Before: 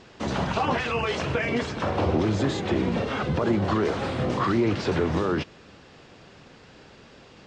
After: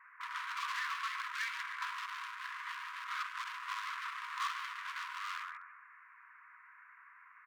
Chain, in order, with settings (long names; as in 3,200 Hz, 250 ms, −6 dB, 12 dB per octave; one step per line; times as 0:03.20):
Butterworth low-pass 2,200 Hz 72 dB per octave
on a send: repeating echo 143 ms, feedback 35%, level −9 dB
on the sum: gain into a clipping stage and back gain 31 dB
linear-phase brick-wall high-pass 950 Hz
level −1 dB